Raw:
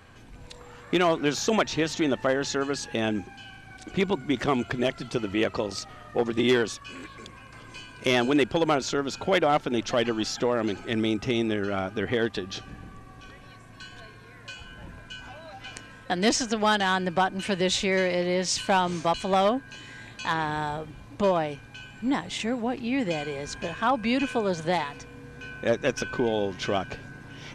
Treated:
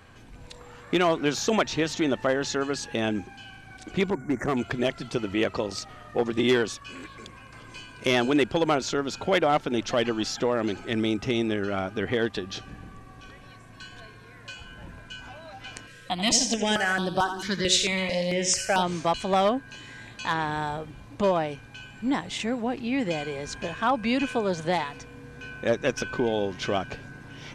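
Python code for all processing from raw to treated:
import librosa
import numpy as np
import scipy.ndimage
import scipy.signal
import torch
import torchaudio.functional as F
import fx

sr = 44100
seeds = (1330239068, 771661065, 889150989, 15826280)

y = fx.chain(x, sr, fx.cheby1_bandstop(low_hz=2000.0, high_hz=6200.0, order=3),
    fx.overload_stage(gain_db=19.5), at=(4.1, 4.57))
y = fx.chain(y, sr, fx.high_shelf(hz=2300.0, db=7.0),
    fx.echo_feedback(ms=85, feedback_pct=38, wet_db=-9),
    fx.phaser_held(hz=4.5, low_hz=230.0, high_hz=7100.0), at=(15.87, 18.83))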